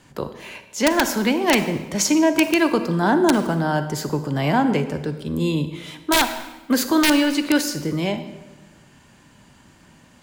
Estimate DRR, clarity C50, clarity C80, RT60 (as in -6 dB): 9.5 dB, 10.5 dB, 12.5 dB, 1.2 s